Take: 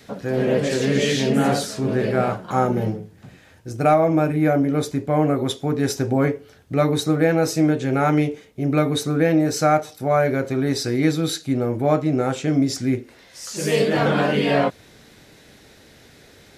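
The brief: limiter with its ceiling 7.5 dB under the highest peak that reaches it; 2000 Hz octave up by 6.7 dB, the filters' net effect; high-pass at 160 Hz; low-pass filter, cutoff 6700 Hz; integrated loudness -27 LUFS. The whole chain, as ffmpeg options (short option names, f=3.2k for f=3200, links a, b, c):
-af "highpass=160,lowpass=6.7k,equalizer=f=2k:t=o:g=8.5,volume=-5dB,alimiter=limit=-15.5dB:level=0:latency=1"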